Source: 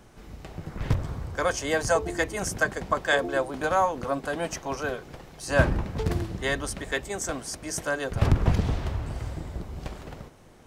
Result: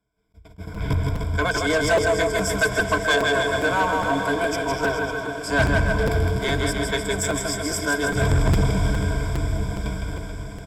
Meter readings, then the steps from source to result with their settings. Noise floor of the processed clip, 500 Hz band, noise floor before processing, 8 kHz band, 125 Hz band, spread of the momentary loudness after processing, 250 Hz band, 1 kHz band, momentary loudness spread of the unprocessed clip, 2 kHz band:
-45 dBFS, +5.5 dB, -51 dBFS, +4.5 dB, +5.5 dB, 9 LU, +6.5 dB, +5.0 dB, 15 LU, +7.0 dB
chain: gate -38 dBFS, range -30 dB; ripple EQ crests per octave 1.7, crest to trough 18 dB; on a send: bouncing-ball echo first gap 0.16 s, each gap 0.9×, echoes 5; on the sum: soft clip -15 dBFS, distortion -12 dB; diffused feedback echo 1.036 s, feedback 47%, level -11.5 dB; crackling interface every 0.41 s, samples 256, repeat, from 0.74; attack slew limiter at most 450 dB/s; gain +1.5 dB

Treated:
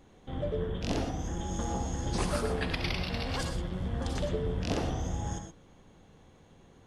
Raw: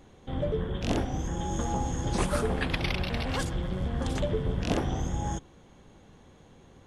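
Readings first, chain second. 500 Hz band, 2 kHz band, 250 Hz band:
-2.5 dB, -3.0 dB, -3.0 dB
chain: dynamic EQ 4900 Hz, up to +6 dB, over -56 dBFS, Q 2.8; non-linear reverb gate 0.14 s rising, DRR 5.5 dB; gain -4 dB

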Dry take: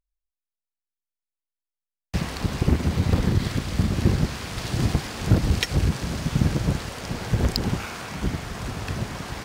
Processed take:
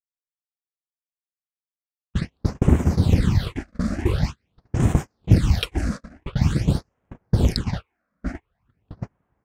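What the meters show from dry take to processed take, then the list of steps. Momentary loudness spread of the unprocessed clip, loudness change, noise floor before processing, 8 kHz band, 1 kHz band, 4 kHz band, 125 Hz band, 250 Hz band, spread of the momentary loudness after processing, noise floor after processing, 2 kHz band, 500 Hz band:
9 LU, +2.5 dB, under -85 dBFS, -5.0 dB, -3.0 dB, -3.0 dB, +2.0 dB, +1.5 dB, 15 LU, under -85 dBFS, -4.0 dB, 0.0 dB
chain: gate -24 dBFS, range -41 dB; phaser stages 8, 0.46 Hz, lowest notch 110–4500 Hz; low-pass opened by the level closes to 2000 Hz, open at -17.5 dBFS; gain +3 dB

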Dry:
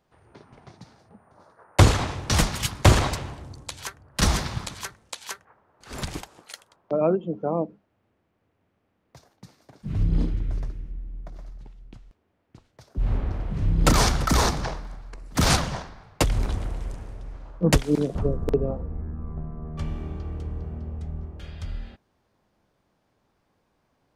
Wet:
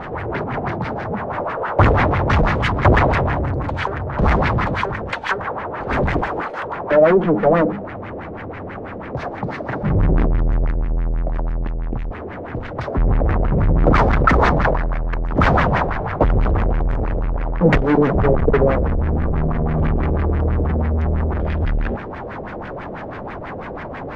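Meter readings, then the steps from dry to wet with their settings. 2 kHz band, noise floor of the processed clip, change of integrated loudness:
+10.0 dB, -31 dBFS, +6.5 dB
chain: power-law curve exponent 0.35; LFO low-pass sine 6.1 Hz 490–2100 Hz; gain -3.5 dB

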